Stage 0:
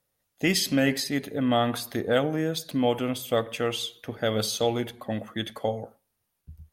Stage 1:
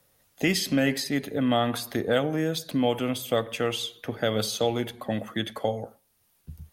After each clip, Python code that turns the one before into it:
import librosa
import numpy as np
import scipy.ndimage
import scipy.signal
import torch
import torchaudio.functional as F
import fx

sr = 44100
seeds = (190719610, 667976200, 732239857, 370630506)

y = fx.band_squash(x, sr, depth_pct=40)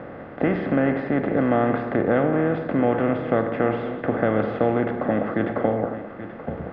y = fx.bin_compress(x, sr, power=0.4)
y = scipy.signal.sosfilt(scipy.signal.butter(4, 1700.0, 'lowpass', fs=sr, output='sos'), y)
y = y + 10.0 ** (-12.5 / 20.0) * np.pad(y, (int(831 * sr / 1000.0), 0))[:len(y)]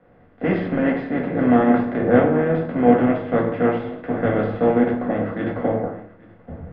y = fx.notch(x, sr, hz=1200.0, q=26.0)
y = fx.room_shoebox(y, sr, seeds[0], volume_m3=240.0, walls='furnished', distance_m=1.8)
y = fx.band_widen(y, sr, depth_pct=100)
y = y * librosa.db_to_amplitude(-1.5)